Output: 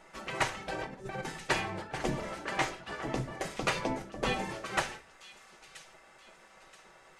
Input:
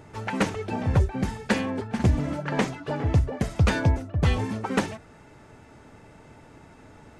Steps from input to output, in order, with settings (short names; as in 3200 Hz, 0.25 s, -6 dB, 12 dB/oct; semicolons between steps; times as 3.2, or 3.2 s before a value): spectral gate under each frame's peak -10 dB weak; 0.67–1.25 negative-ratio compressor -38 dBFS, ratio -0.5; thin delay 0.978 s, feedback 39%, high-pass 3100 Hz, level -12 dB; on a send at -4 dB: reverb RT60 0.40 s, pre-delay 5 ms; on the sum: gain -2.5 dB